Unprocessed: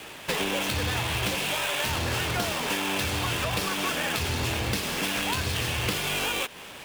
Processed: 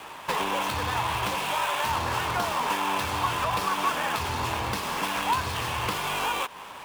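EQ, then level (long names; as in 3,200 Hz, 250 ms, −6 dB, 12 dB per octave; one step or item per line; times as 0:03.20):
parametric band 1,000 Hz +14.5 dB 0.88 octaves
−4.5 dB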